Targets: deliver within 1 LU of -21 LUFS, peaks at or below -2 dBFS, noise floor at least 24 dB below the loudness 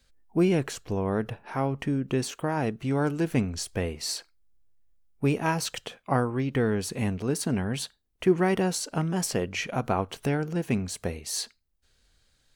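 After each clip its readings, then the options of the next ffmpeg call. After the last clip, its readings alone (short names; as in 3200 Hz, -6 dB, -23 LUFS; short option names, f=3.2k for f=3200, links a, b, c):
loudness -28.5 LUFS; peak -10.5 dBFS; loudness target -21.0 LUFS
-> -af "volume=7.5dB"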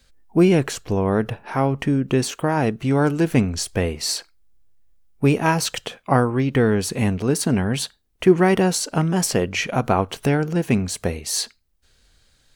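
loudness -21.0 LUFS; peak -3.0 dBFS; noise floor -62 dBFS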